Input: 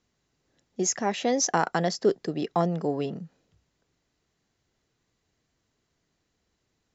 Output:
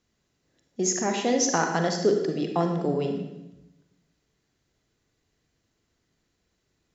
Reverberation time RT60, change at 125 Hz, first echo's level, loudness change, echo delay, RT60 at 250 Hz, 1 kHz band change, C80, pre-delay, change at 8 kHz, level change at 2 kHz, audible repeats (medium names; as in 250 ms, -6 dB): 0.90 s, +1.5 dB, no echo, +1.5 dB, no echo, 1.2 s, -0.5 dB, 7.0 dB, 37 ms, no reading, +2.0 dB, no echo